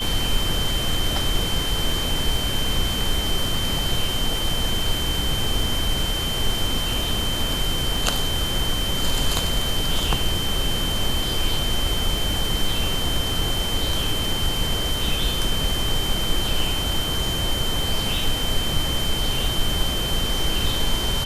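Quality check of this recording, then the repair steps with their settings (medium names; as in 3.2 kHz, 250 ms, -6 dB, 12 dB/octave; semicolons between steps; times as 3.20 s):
crackle 52 per s -29 dBFS
whine 3.1 kHz -26 dBFS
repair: de-click; band-stop 3.1 kHz, Q 30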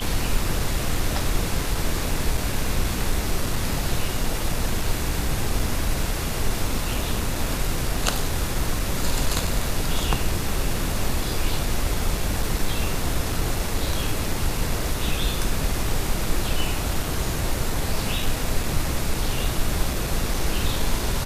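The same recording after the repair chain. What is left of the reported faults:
nothing left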